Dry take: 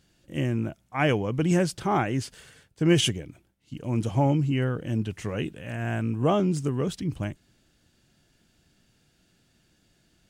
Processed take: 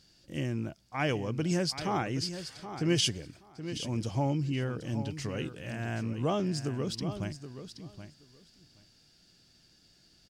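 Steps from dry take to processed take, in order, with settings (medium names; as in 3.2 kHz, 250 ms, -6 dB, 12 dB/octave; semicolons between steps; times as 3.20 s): in parallel at +0.5 dB: compression, threshold -36 dBFS, peak gain reduction 19.5 dB; on the sum: peaking EQ 4.9 kHz +14.5 dB 0.58 oct; feedback delay 775 ms, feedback 15%, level -11 dB; trim -8.5 dB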